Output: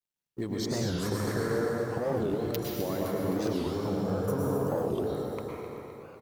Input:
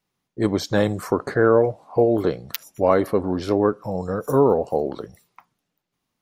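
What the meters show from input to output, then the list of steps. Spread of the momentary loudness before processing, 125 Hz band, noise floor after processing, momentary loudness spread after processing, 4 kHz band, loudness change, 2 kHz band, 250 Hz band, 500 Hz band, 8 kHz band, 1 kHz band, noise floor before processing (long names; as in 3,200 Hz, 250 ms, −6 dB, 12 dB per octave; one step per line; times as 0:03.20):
11 LU, −4.5 dB, below −85 dBFS, 10 LU, −3.5 dB, −9.5 dB, −9.0 dB, −7.5 dB, −10.5 dB, can't be measured, −11.0 dB, −79 dBFS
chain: mu-law and A-law mismatch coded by A
parametric band 870 Hz −5 dB 2.4 octaves
mains-hum notches 60/120 Hz
automatic gain control gain up to 15.5 dB
brickwall limiter −10.5 dBFS, peak gain reduction 9.5 dB
downward compressor 6 to 1, threshold −27 dBFS, peak gain reduction 11.5 dB
on a send: repeating echo 258 ms, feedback 58%, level −10 dB
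on the sum: dense smooth reverb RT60 2.8 s, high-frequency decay 0.65×, pre-delay 95 ms, DRR −3.5 dB
wow of a warped record 45 rpm, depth 250 cents
level −4.5 dB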